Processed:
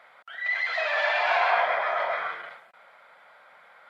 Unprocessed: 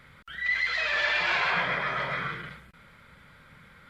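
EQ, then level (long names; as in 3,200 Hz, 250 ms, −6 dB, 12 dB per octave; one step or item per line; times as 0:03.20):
high-pass with resonance 700 Hz, resonance Q 4.9
high-shelf EQ 4,200 Hz −8.5 dB
0.0 dB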